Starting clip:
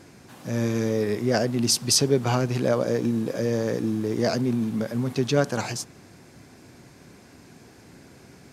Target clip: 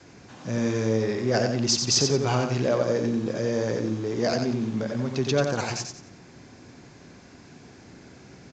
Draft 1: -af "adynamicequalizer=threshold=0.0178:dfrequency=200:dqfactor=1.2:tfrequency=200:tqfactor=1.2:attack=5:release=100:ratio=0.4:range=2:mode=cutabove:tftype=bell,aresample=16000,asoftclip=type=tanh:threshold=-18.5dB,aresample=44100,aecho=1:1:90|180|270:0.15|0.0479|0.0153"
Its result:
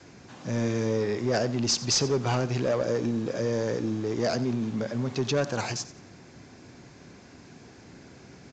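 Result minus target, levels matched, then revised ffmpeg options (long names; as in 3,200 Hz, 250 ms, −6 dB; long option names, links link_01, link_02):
echo-to-direct −11 dB; soft clipping: distortion +9 dB
-af "adynamicequalizer=threshold=0.0178:dfrequency=200:dqfactor=1.2:tfrequency=200:tqfactor=1.2:attack=5:release=100:ratio=0.4:range=2:mode=cutabove:tftype=bell,aresample=16000,asoftclip=type=tanh:threshold=-11.5dB,aresample=44100,aecho=1:1:90|180|270|360:0.531|0.17|0.0544|0.0174"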